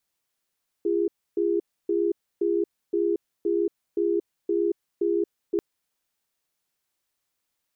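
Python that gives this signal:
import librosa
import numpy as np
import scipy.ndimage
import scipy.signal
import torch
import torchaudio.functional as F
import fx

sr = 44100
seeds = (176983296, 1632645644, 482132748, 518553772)

y = fx.cadence(sr, length_s=4.74, low_hz=342.0, high_hz=407.0, on_s=0.23, off_s=0.29, level_db=-23.5)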